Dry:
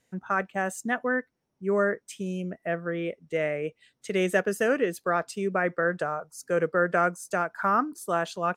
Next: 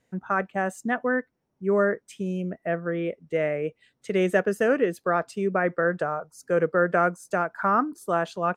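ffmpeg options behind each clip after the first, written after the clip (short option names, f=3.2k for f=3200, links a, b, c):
-af "highshelf=f=2.6k:g=-9,volume=3dB"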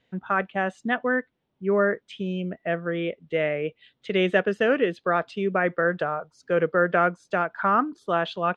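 -af "lowpass=f=3.4k:t=q:w=3.4"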